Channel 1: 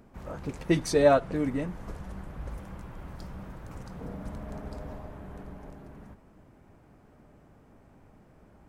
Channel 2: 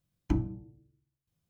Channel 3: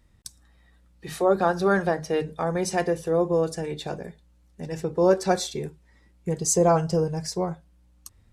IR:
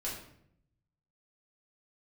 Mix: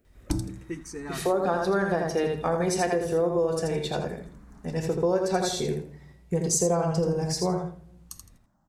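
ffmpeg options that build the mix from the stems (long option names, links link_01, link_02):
-filter_complex "[0:a]aexciter=amount=1.3:drive=7.7:freq=5700,asplit=2[link_01][link_02];[link_02]afreqshift=-0.29[link_03];[link_01][link_03]amix=inputs=2:normalize=1,volume=-10dB,asplit=2[link_04][link_05];[link_05]volume=-18dB[link_06];[1:a]volume=2dB[link_07];[2:a]adelay=50,volume=0dB,asplit=3[link_08][link_09][link_10];[link_09]volume=-8.5dB[link_11];[link_10]volume=-4dB[link_12];[3:a]atrim=start_sample=2205[link_13];[link_11][link_13]afir=irnorm=-1:irlink=0[link_14];[link_06][link_12]amix=inputs=2:normalize=0,aecho=0:1:82|164|246|328:1|0.22|0.0484|0.0106[link_15];[link_04][link_07][link_08][link_14][link_15]amix=inputs=5:normalize=0,acompressor=threshold=-21dB:ratio=6"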